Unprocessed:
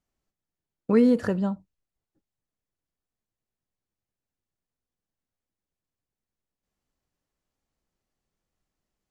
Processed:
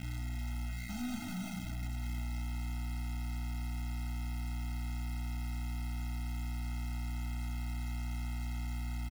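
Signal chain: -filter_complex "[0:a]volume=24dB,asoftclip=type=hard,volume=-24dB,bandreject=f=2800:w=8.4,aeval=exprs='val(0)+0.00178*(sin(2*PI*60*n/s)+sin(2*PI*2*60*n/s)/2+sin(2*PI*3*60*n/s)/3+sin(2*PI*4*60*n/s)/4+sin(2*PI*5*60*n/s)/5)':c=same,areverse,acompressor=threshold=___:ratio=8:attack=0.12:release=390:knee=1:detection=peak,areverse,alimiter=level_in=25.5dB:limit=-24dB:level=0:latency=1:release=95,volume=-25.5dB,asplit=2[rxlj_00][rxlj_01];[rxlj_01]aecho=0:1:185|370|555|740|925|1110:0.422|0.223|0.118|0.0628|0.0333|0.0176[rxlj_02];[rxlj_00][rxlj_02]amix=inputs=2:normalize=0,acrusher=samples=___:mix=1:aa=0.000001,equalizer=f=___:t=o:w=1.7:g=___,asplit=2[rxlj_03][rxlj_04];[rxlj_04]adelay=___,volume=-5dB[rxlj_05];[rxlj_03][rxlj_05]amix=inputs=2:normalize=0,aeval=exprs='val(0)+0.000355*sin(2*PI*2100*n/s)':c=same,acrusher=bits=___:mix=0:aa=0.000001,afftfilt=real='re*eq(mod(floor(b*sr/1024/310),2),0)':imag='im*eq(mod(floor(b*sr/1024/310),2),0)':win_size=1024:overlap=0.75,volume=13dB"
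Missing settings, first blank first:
-44dB, 22, 920, -6.5, 33, 8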